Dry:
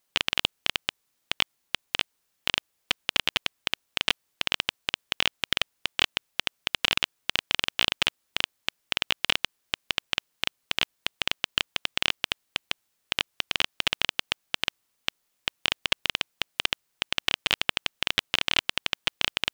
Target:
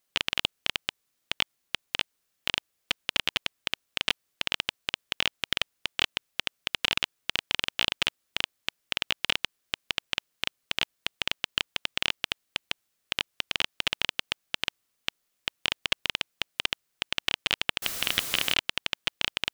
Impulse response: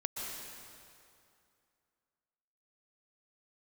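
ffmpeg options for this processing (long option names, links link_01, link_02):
-filter_complex "[0:a]asettb=1/sr,asplit=3[link_01][link_02][link_03];[link_01]atrim=end=17.824[link_04];[link_02]atrim=start=17.82:end=18.54,asetpts=PTS-STARTPTS,afade=type=in:duration=0.004:curve=qsin,afade=type=out:start_time=0.716:duration=0.004:curve=qsin,aeval=exprs='val(0)+0.5*0.0473*sgn(val(0))':channel_layout=same[link_05];[link_03]atrim=start=18.536[link_06];[link_04][link_05]acrossfade=duration=0.004:curve1=hsin:curve2=qsin[link_07];[link_07][link_06]acrossfade=duration=0.004:curve1=qsin:curve2=hsin,equalizer=frequency=900:width=5.6:gain=-5,volume=-2dB"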